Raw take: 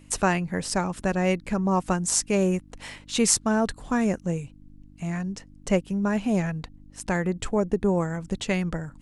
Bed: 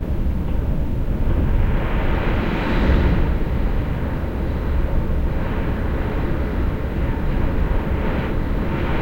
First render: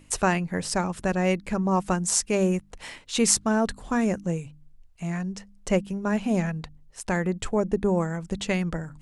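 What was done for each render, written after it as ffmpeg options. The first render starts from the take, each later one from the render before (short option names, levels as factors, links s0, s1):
-af "bandreject=f=50:t=h:w=4,bandreject=f=100:t=h:w=4,bandreject=f=150:t=h:w=4,bandreject=f=200:t=h:w=4,bandreject=f=250:t=h:w=4,bandreject=f=300:t=h:w=4"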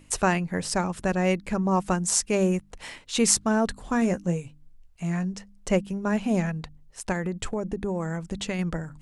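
-filter_complex "[0:a]asettb=1/sr,asplit=3[s0][s1][s2];[s0]atrim=end=4.004[s3];[s1]atrim=start=4:end=5.34,asetpts=PTS-STARTPTS,afade=t=in:d=0.004:c=qsin,afade=t=out:st=1.336:d=0.004:c=qsin,asplit=2[s4][s5];[s5]adelay=17,volume=0.355[s6];[s4][s6]amix=inputs=2:normalize=0,atrim=end_sample=59094[s7];[s2]atrim=start=5.336[s8];[s3][s7]acrossfade=d=0.004:c1=hsin:c2=qsin[s9];[s9][s8]acrossfade=d=0.004:c1=qsin:c2=hsin,asettb=1/sr,asplit=3[s10][s11][s12];[s10]atrim=end=7.124[s13];[s11]atrim=start=7.12:end=8.59,asetpts=PTS-STARTPTS,afade=t=in:d=0.004:c=qsin,afade=t=out:st=1.466:d=0.004:c=qsin,acompressor=threshold=0.0631:ratio=6:attack=3.2:release=140:knee=1:detection=peak[s14];[s12]atrim=start=8.586[s15];[s13][s14]acrossfade=d=0.004:c1=hsin:c2=qsin[s16];[s16][s15]acrossfade=d=0.004:c1=qsin:c2=hsin"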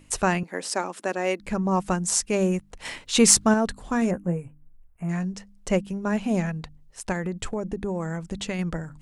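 -filter_complex "[0:a]asettb=1/sr,asplit=3[s0][s1][s2];[s0]atrim=end=0.434[s3];[s1]atrim=start=0.43:end=1.4,asetpts=PTS-STARTPTS,afade=t=in:d=0.004:c=qsin,afade=t=out:st=0.966:d=0.004:c=qsin,highpass=f=270:w=0.5412,highpass=f=270:w=1.3066[s4];[s2]atrim=start=1.396[s5];[s3][s4]acrossfade=d=0.004:c1=hsin:c2=qsin[s6];[s6][s5]acrossfade=d=0.004:c1=qsin:c2=hsin,asettb=1/sr,asplit=3[s7][s8][s9];[s7]atrim=end=2.854[s10];[s8]atrim=start=2.85:end=3.54,asetpts=PTS-STARTPTS,afade=t=in:d=0.004:c=qsin,afade=t=out:st=0.686:d=0.004:c=qsin,acontrast=32[s11];[s9]atrim=start=3.536[s12];[s10][s11]acrossfade=d=0.004:c1=hsin:c2=qsin[s13];[s13][s12]acrossfade=d=0.004:c1=qsin:c2=hsin,asplit=3[s14][s15][s16];[s14]afade=t=out:st=4.1:d=0.02[s17];[s15]asuperstop=centerf=4600:order=4:qfactor=0.55,afade=t=in:st=4.1:d=0.02,afade=t=out:st=5.08:d=0.02[s18];[s16]afade=t=in:st=5.08:d=0.02[s19];[s17][s18][s19]amix=inputs=3:normalize=0"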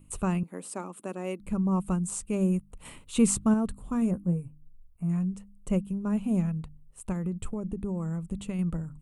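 -filter_complex "[0:a]firequalizer=gain_entry='entry(180,0);entry(310,-6);entry(730,-13);entry(1200,-7);entry(1700,-20);entry(2600,-11);entry(5300,-22);entry(8600,-2)':delay=0.05:min_phase=1,acrossover=split=8100[s0][s1];[s1]acompressor=threshold=0.00631:ratio=4:attack=1:release=60[s2];[s0][s2]amix=inputs=2:normalize=0"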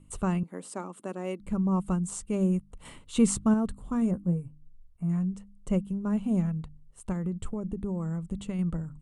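-af "lowpass=8300,bandreject=f=2500:w=9.8"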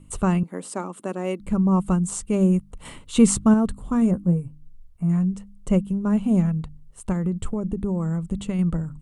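-af "volume=2.24"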